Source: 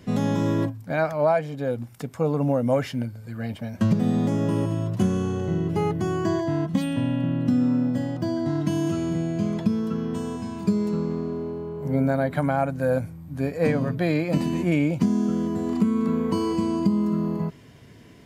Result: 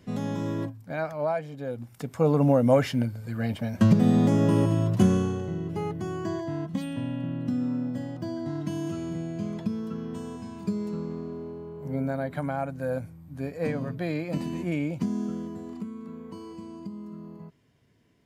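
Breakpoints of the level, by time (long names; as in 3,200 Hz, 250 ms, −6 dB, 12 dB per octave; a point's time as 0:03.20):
0:01.73 −7 dB
0:02.29 +2 dB
0:05.12 +2 dB
0:05.52 −7 dB
0:15.23 −7 dB
0:16.01 −17 dB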